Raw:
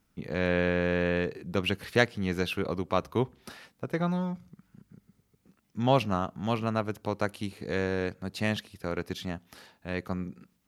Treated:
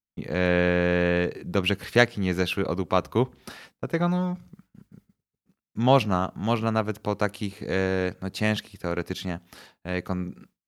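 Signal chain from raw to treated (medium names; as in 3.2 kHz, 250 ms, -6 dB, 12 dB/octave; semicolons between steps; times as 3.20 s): expander -50 dBFS; trim +4.5 dB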